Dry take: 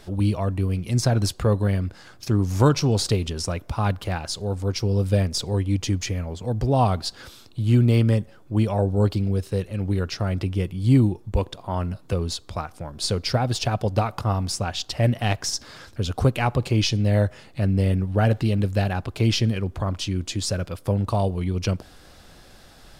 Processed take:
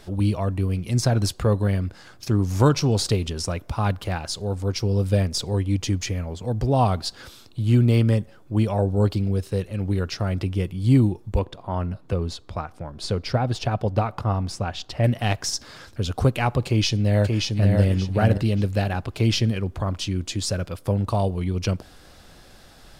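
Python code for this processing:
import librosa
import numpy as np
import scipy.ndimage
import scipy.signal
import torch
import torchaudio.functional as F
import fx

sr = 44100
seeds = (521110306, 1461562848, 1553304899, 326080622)

y = fx.high_shelf(x, sr, hz=4300.0, db=-11.5, at=(11.39, 15.04))
y = fx.echo_throw(y, sr, start_s=16.66, length_s=1.13, ms=580, feedback_pct=25, wet_db=-3.0)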